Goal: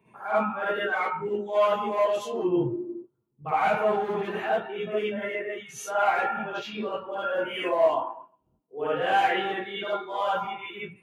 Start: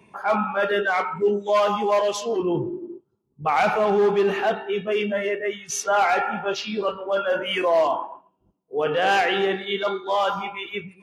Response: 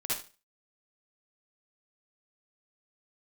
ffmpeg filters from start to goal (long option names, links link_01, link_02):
-filter_complex "[0:a]equalizer=frequency=5300:width_type=o:width=0.86:gain=-12[link_01];[1:a]atrim=start_sample=2205,afade=type=out:start_time=0.14:duration=0.01,atrim=end_sample=6615[link_02];[link_01][link_02]afir=irnorm=-1:irlink=0,volume=-8dB"